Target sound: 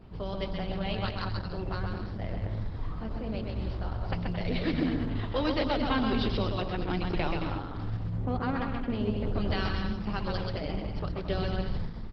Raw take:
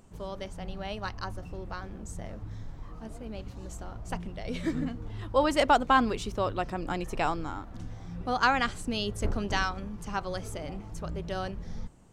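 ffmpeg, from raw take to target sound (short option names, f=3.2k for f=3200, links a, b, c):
-filter_complex "[0:a]bandreject=f=235.4:t=h:w=4,bandreject=f=470.8:t=h:w=4,adynamicequalizer=threshold=0.00224:dfrequency=100:dqfactor=3.1:tfrequency=100:tqfactor=3.1:attack=5:release=100:ratio=0.375:range=2:mode=boostabove:tftype=bell,acrossover=split=410|2300[a][b][c];[a]asoftclip=type=tanh:threshold=-32.5dB[d];[b]acompressor=threshold=-43dB:ratio=4[e];[c]alimiter=level_in=6dB:limit=-24dB:level=0:latency=1:release=342,volume=-6dB[f];[d][e][f]amix=inputs=3:normalize=0,aeval=exprs='val(0)+0.00112*(sin(2*PI*60*n/s)+sin(2*PI*2*60*n/s)/2+sin(2*PI*3*60*n/s)/3+sin(2*PI*4*60*n/s)/4+sin(2*PI*5*60*n/s)/5)':c=same,asplit=3[g][h][i];[g]afade=t=out:st=7.96:d=0.02[j];[h]adynamicsmooth=sensitivity=2:basefreq=1.1k,afade=t=in:st=7.96:d=0.02,afade=t=out:st=9.33:d=0.02[k];[i]afade=t=in:st=9.33:d=0.02[l];[j][k][l]amix=inputs=3:normalize=0,asplit=2[m][n];[n]aecho=0:1:130|221|284.7|329.3|360.5:0.631|0.398|0.251|0.158|0.1[o];[m][o]amix=inputs=2:normalize=0,aresample=11025,aresample=44100,volume=5.5dB" -ar 48000 -c:a libopus -b:a 12k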